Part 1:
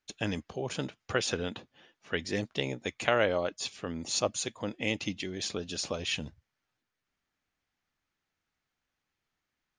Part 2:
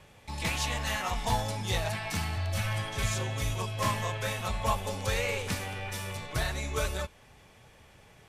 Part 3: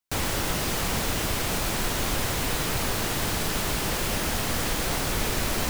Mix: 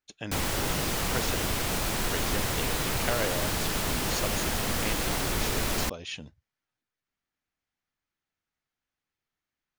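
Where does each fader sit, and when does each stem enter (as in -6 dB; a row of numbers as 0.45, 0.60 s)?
-5.0 dB, off, -2.0 dB; 0.00 s, off, 0.20 s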